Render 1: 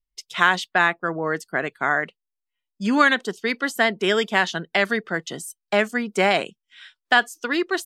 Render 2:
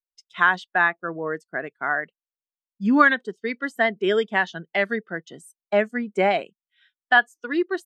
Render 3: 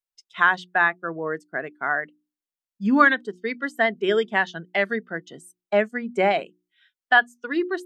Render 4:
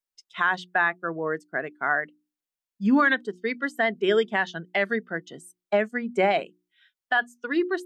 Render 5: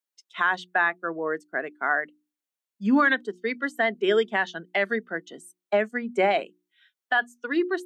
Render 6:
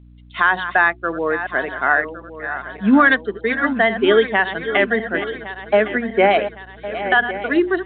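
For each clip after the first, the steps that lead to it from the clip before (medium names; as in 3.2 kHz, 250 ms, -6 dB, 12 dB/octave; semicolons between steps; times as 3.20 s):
spectral contrast expander 1.5:1
hum notches 60/120/180/240/300/360 Hz
de-esser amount 55%; peak limiter -11 dBFS, peak gain reduction 7.5 dB
high-pass 200 Hz 24 dB/octave; band-stop 5 kHz, Q 18
backward echo that repeats 555 ms, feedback 67%, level -11 dB; hum 60 Hz, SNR 26 dB; trim +7.5 dB; µ-law 64 kbps 8 kHz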